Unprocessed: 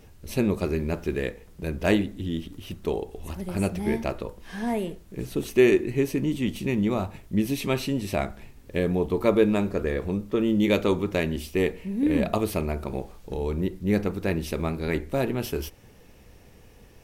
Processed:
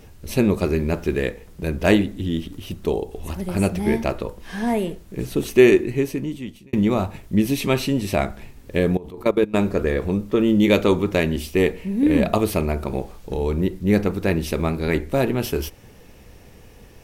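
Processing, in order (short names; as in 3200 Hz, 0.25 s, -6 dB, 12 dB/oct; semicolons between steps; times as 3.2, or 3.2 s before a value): 2.51–3.11 dynamic EQ 1700 Hz, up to -6 dB, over -50 dBFS, Q 1; 5.69–6.73 fade out; 8.97–9.54 level quantiser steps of 21 dB; gain +5.5 dB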